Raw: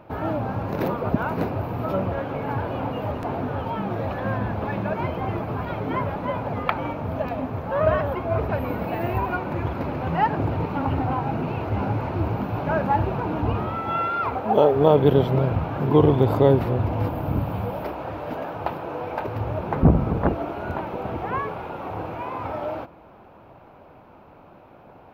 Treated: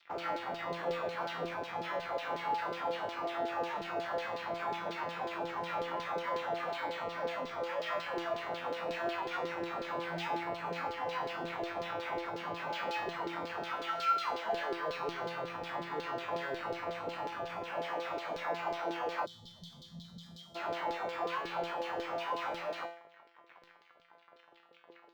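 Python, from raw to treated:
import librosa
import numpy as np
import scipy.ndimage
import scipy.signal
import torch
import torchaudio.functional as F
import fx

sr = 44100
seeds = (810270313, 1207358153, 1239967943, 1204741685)

y = fx.fuzz(x, sr, gain_db=39.0, gate_db=-43.0)
y = fx.filter_lfo_bandpass(y, sr, shape='saw_down', hz=5.5, low_hz=390.0, high_hz=4400.0, q=2.8)
y = fx.comb_fb(y, sr, f0_hz=170.0, decay_s=0.54, harmonics='all', damping=0.0, mix_pct=90)
y = fx.spec_box(y, sr, start_s=19.25, length_s=1.31, low_hz=240.0, high_hz=3000.0, gain_db=-27)
y = np.interp(np.arange(len(y)), np.arange(len(y))[::2], y[::2])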